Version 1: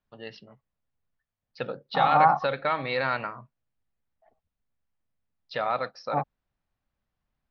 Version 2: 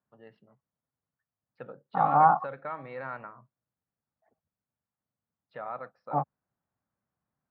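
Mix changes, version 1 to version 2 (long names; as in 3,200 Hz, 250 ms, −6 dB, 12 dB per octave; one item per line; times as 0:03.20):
first voice −9.5 dB
master: add Chebyshev band-pass filter 120–1,400 Hz, order 2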